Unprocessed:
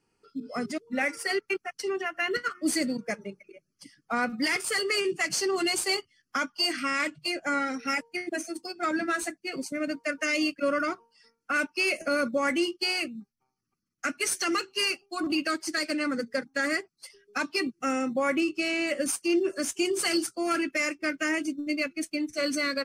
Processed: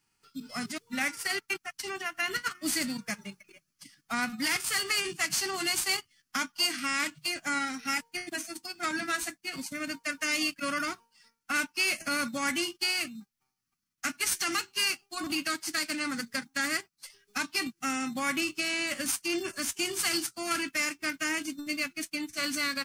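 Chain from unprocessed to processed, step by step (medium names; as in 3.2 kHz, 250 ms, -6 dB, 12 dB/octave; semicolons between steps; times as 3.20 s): formants flattened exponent 0.6; peaking EQ 480 Hz -13.5 dB 1.2 oct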